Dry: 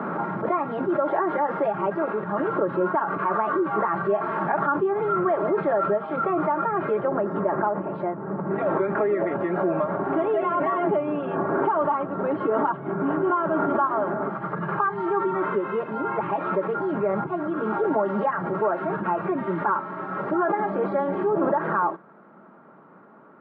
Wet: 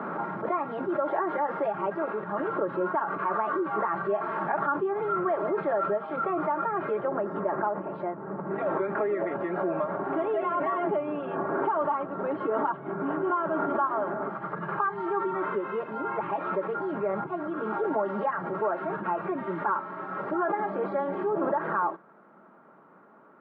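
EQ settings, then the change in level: bass shelf 210 Hz -7 dB; -3.5 dB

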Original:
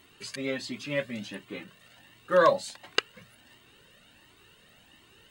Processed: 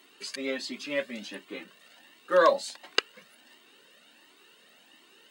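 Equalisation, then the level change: high-pass 230 Hz 24 dB/octave; peaking EQ 4.9 kHz +3 dB 0.7 oct; 0.0 dB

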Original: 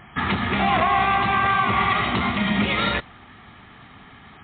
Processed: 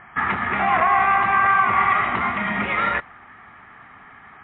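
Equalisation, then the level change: low-pass 1.9 kHz 24 dB/octave; tilt shelf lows -8.5 dB, about 700 Hz; 0.0 dB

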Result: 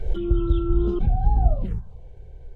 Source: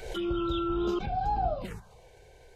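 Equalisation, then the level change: tilt EQ -3 dB/octave; bass shelf 340 Hz +11 dB; peaking EQ 3.2 kHz +4.5 dB 0.26 oct; -6.5 dB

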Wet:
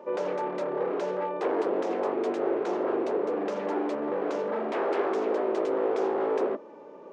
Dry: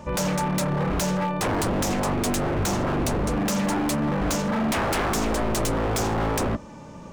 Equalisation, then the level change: ladder high-pass 360 Hz, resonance 60%; tape spacing loss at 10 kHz 34 dB; +7.0 dB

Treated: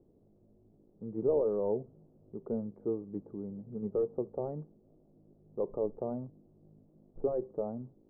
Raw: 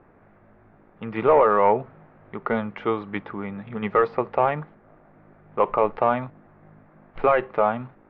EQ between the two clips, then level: four-pole ladder low-pass 530 Hz, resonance 30%; distance through air 330 m; -2.5 dB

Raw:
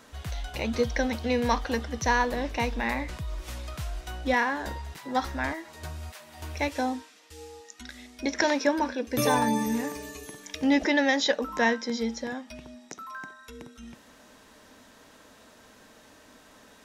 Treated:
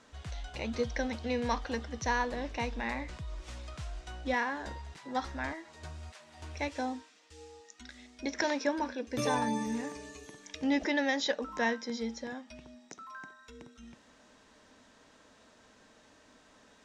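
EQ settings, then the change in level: low-pass 8.4 kHz 24 dB/octave; -6.5 dB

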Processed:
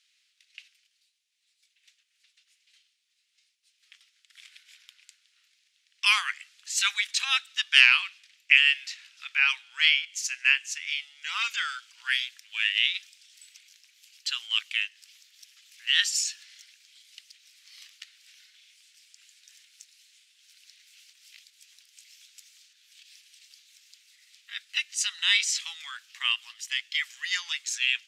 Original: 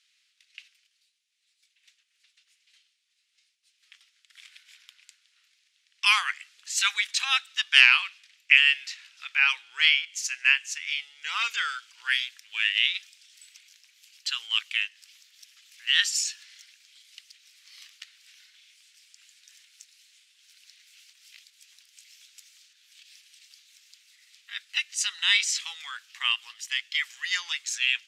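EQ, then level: high-pass 1.2 kHz 6 dB/octave; 0.0 dB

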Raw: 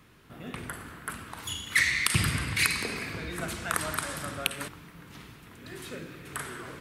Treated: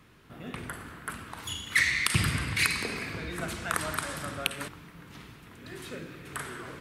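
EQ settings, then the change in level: treble shelf 7.6 kHz -4 dB; 0.0 dB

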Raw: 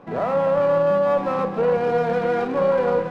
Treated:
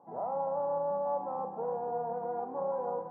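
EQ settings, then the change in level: high-pass 130 Hz 6 dB/octave; four-pole ladder low-pass 920 Hz, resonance 75%; -6.5 dB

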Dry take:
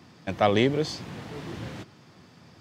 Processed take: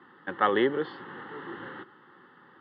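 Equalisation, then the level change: distance through air 330 m; cabinet simulation 370–3200 Hz, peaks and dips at 370 Hz +6 dB, 560 Hz +8 dB, 820 Hz +8 dB, 1.3 kHz +5 dB, 1.8 kHz +8 dB, 3 kHz +5 dB; static phaser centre 2.4 kHz, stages 6; +2.5 dB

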